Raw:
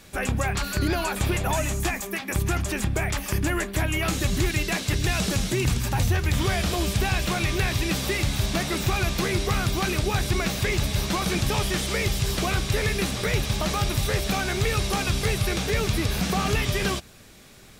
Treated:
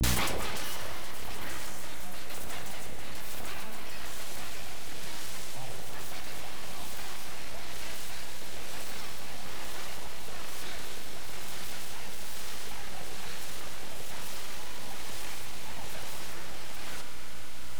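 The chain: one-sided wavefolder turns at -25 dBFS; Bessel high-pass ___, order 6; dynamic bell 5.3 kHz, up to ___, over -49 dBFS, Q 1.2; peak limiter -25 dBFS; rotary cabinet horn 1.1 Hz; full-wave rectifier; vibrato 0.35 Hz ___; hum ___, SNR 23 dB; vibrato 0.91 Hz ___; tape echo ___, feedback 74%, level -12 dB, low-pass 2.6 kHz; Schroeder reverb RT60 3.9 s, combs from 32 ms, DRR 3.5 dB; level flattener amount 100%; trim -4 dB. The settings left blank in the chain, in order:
270 Hz, -4 dB, 97 cents, 60 Hz, 91 cents, 64 ms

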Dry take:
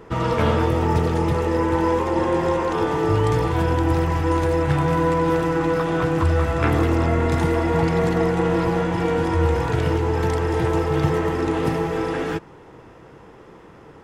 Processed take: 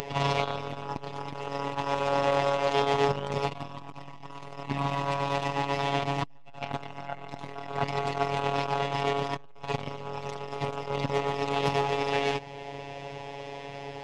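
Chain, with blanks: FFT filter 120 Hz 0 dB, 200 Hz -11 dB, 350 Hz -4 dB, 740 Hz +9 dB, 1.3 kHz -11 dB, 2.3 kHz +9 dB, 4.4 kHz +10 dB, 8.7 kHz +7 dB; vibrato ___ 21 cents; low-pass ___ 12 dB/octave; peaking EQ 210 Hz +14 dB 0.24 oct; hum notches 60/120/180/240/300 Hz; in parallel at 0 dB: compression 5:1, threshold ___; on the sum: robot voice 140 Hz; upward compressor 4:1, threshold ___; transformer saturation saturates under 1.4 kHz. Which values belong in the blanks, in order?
0.62 Hz, 5.8 kHz, -33 dBFS, -32 dBFS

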